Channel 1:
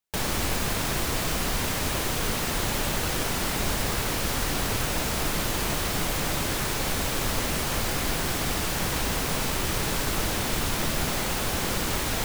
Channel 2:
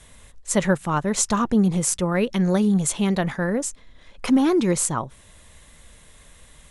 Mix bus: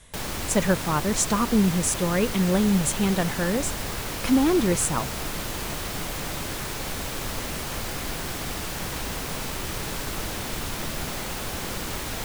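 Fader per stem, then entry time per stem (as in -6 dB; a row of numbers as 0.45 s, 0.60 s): -4.0 dB, -2.0 dB; 0.00 s, 0.00 s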